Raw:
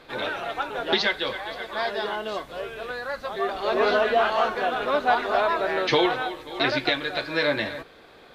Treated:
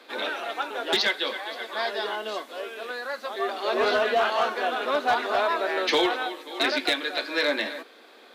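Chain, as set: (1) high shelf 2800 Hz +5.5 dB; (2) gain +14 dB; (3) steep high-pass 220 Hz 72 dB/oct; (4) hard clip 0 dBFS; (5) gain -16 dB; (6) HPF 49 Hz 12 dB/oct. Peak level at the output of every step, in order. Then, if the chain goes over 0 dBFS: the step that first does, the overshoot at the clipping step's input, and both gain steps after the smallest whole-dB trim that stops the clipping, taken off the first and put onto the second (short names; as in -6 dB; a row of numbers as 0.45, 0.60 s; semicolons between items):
-7.0, +7.0, +7.5, 0.0, -16.0, -14.5 dBFS; step 2, 7.5 dB; step 2 +6 dB, step 5 -8 dB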